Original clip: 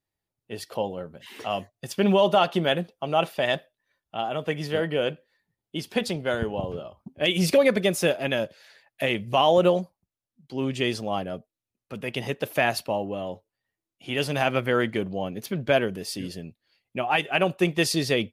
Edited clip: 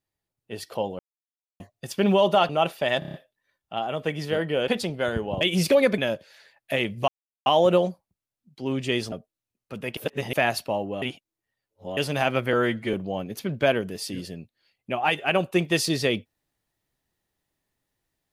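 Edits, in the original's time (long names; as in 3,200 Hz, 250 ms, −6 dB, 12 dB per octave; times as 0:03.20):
0:00.99–0:01.60: silence
0:02.49–0:03.06: remove
0:03.56: stutter 0.03 s, 6 plays
0:05.10–0:05.94: remove
0:06.67–0:07.24: remove
0:07.81–0:08.28: remove
0:09.38: splice in silence 0.38 s
0:11.04–0:11.32: remove
0:12.17–0:12.53: reverse
0:13.22–0:14.17: reverse
0:14.73–0:15.00: time-stretch 1.5×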